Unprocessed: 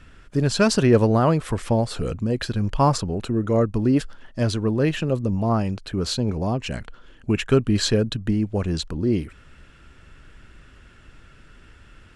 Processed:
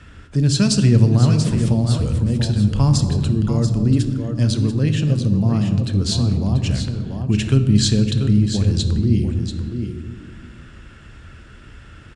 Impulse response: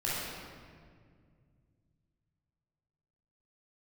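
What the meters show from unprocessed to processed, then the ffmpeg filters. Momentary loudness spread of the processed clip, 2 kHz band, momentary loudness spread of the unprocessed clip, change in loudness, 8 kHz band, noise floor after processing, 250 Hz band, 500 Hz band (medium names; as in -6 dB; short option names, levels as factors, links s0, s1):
10 LU, -3.0 dB, 8 LU, +4.5 dB, +5.5 dB, -42 dBFS, +4.0 dB, -5.5 dB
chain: -filter_complex "[0:a]highpass=48,aecho=1:1:687:0.355,asplit=2[s0][s1];[1:a]atrim=start_sample=2205,asetrate=83790,aresample=44100,lowshelf=f=200:g=10.5[s2];[s1][s2]afir=irnorm=-1:irlink=0,volume=0.299[s3];[s0][s3]amix=inputs=2:normalize=0,acrossover=split=220|3000[s4][s5][s6];[s5]acompressor=threshold=0.00708:ratio=2[s7];[s4][s7][s6]amix=inputs=3:normalize=0,aresample=22050,aresample=44100,volume=1.58"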